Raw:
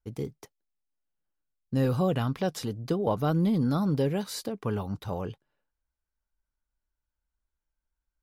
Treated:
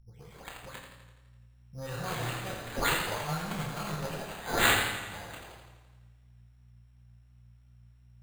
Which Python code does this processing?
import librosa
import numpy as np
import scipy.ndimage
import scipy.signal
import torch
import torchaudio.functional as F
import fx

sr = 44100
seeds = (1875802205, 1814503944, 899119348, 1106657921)

y = fx.spec_delay(x, sr, highs='late', ms=311)
y = fx.high_shelf_res(y, sr, hz=4800.0, db=12.5, q=1.5)
y = fx.cheby_harmonics(y, sr, harmonics=(7,), levels_db=(-26,), full_scale_db=-14.0)
y = fx.add_hum(y, sr, base_hz=60, snr_db=17)
y = fx.tone_stack(y, sr, knobs='10-0-10')
y = fx.doubler(y, sr, ms=26.0, db=-6.5)
y = fx.rev_double_slope(y, sr, seeds[0], early_s=0.61, late_s=2.6, knee_db=-27, drr_db=3.5)
y = np.repeat(y[::8], 8)[:len(y)]
y = fx.echo_warbled(y, sr, ms=84, feedback_pct=61, rate_hz=2.8, cents=60, wet_db=-7.0)
y = F.gain(torch.from_numpy(y), 2.5).numpy()